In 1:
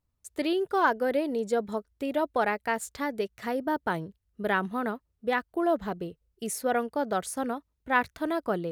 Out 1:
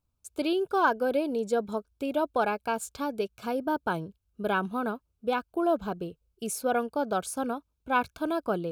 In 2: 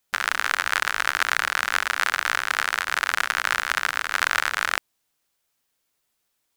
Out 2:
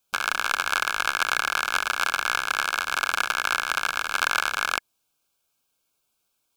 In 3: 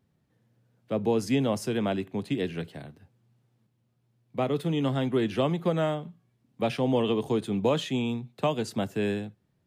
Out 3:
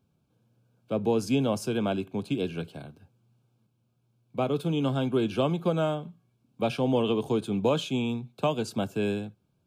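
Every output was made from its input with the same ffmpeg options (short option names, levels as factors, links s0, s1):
-af "asuperstop=centerf=1900:order=12:qfactor=3.9"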